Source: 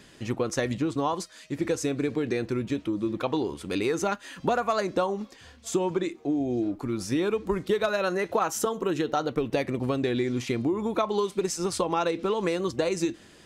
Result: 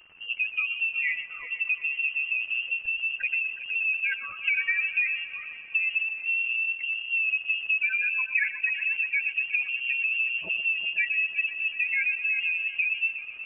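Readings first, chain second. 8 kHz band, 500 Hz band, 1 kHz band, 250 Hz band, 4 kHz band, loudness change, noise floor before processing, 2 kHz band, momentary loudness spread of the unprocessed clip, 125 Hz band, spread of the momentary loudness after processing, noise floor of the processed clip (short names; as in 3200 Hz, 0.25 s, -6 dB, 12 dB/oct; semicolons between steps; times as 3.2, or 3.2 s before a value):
under -40 dB, under -35 dB, under -20 dB, under -35 dB, +2.0 dB, +2.5 dB, -53 dBFS, +14.0 dB, 4 LU, under -30 dB, 4 LU, -42 dBFS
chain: spectral contrast raised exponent 3; HPF 190 Hz 12 dB/oct; crackle 240/s -40 dBFS; on a send: multi-head echo 0.122 s, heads first and third, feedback 59%, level -14 dB; on the sum: inverted band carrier 3000 Hz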